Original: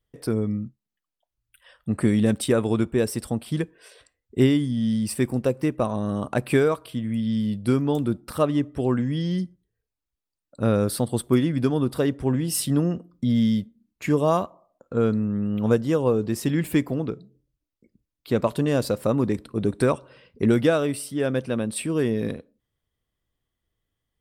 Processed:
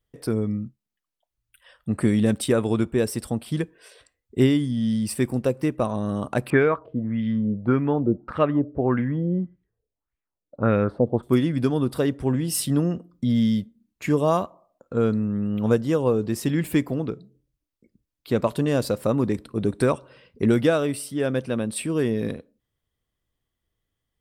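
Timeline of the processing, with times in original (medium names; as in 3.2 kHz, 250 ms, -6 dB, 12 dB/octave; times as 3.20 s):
6.50–11.23 s: LFO low-pass sine 1.7 Hz 480–2300 Hz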